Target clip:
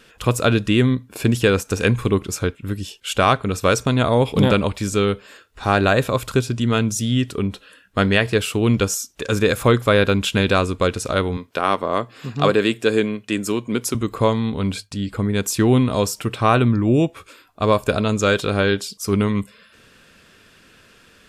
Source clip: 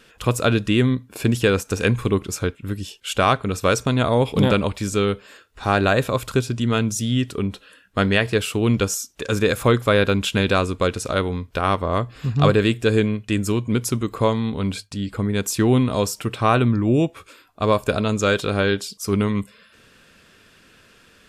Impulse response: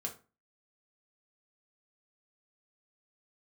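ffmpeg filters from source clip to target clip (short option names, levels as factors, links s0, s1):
-filter_complex "[0:a]asettb=1/sr,asplit=3[s0][s1][s2];[s0]atrim=end=11.374[s3];[s1]atrim=start=11.37:end=13.95,asetpts=PTS-STARTPTS,afade=t=in:d=0.004:c=qsin,afade=t=out:st=2.576:d=0.004:c=qsin,highpass=220[s4];[s2]atrim=start=13.946[s5];[s3][s4]acrossfade=d=0.004:c1=hsin:c2=qsin[s6];[s6][s5]acrossfade=d=0.004:c1=qsin:c2=hsin,volume=1.19"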